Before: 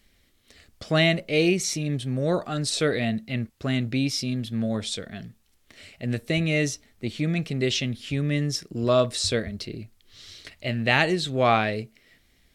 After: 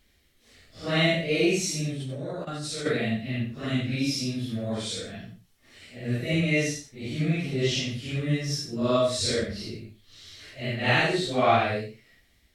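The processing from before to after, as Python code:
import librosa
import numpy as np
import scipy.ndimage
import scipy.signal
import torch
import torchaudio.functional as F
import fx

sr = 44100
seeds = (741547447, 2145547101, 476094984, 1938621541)

y = fx.phase_scramble(x, sr, seeds[0], window_ms=200)
y = fx.level_steps(y, sr, step_db=16, at=(1.91, 2.85), fade=0.02)
y = y + 10.0 ** (-12.0 / 20.0) * np.pad(y, (int(91 * sr / 1000.0), 0))[:len(y)]
y = y * 10.0 ** (-1.5 / 20.0)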